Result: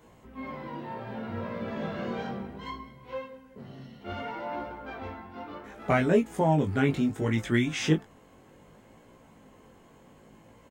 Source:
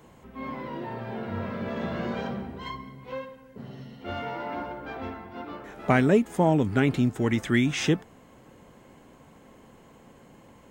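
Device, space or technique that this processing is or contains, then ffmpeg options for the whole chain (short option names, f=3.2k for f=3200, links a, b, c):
double-tracked vocal: -filter_complex "[0:a]asplit=2[a][b];[b]adelay=19,volume=-10.5dB[c];[a][c]amix=inputs=2:normalize=0,flanger=delay=17:depth=4.7:speed=0.66"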